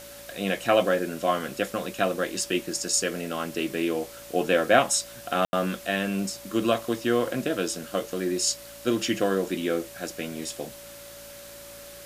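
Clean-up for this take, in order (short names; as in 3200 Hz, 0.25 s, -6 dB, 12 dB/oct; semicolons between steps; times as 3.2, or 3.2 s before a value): de-hum 56.4 Hz, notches 6; notch 570 Hz, Q 30; room tone fill 5.45–5.53; denoiser 28 dB, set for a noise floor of -44 dBFS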